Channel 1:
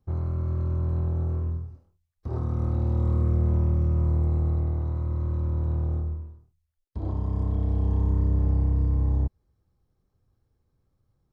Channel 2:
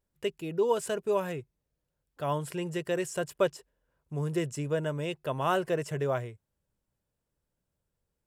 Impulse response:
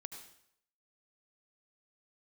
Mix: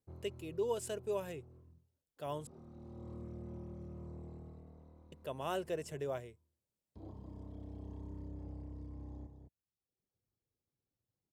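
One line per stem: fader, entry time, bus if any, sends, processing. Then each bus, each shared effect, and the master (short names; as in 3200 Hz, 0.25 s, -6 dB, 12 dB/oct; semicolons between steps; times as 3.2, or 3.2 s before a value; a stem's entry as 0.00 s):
-10.5 dB, 0.00 s, no send, echo send -8 dB, reverb removal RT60 0.83 s; auto duck -9 dB, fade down 0.80 s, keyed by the second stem
-5.5 dB, 0.00 s, muted 2.47–5.12, no send, no echo send, dry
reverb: off
echo: echo 0.21 s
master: HPF 300 Hz 6 dB/oct; bell 1300 Hz -8.5 dB 1.5 oct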